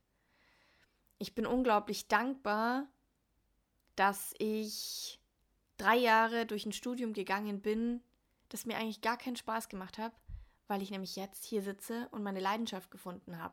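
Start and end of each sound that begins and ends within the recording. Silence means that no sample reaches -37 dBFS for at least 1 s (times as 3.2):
1.21–2.82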